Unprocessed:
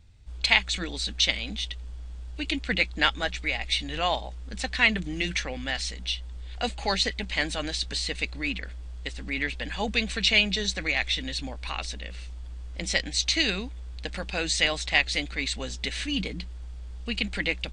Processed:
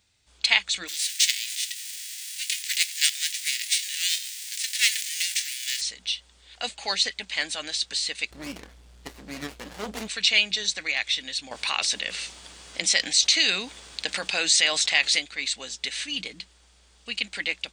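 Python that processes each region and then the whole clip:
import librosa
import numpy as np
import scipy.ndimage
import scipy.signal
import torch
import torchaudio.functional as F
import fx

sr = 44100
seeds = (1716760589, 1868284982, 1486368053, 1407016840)

y = fx.envelope_flatten(x, sr, power=0.3, at=(0.87, 5.8), fade=0.02)
y = fx.steep_highpass(y, sr, hz=1800.0, slope=48, at=(0.87, 5.8), fade=0.02)
y = fx.echo_feedback(y, sr, ms=89, feedback_pct=37, wet_db=-21.0, at=(0.87, 5.8), fade=0.02)
y = fx.chain(y, sr, fx.low_shelf(hz=490.0, db=10.5),
    fx.doubler(ms=28.0, db=-14),
    fx.running_max(window=33), at=(8.31, 10.08))
y = fx.chain(y, sr, fx.highpass(hz=100.0, slope=12),
    fx.env_flatten(amount_pct=50), at=(11.51, 15.19))
y = fx.highpass(y, sr, hz=630.0, slope=6)
y = fx.high_shelf(y, sr, hz=3300.0, db=9.0)
y = y * librosa.db_to_amplitude(-2.5)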